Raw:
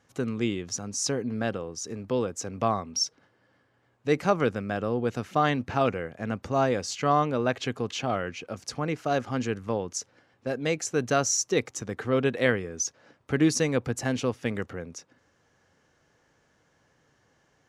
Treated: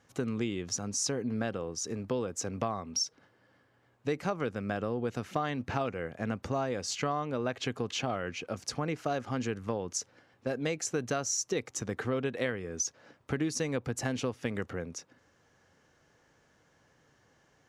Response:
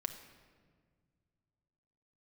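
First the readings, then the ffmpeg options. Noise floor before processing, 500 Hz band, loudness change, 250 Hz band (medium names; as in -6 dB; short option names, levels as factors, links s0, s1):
-68 dBFS, -6.5 dB, -5.5 dB, -5.5 dB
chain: -af "acompressor=threshold=0.0398:ratio=6"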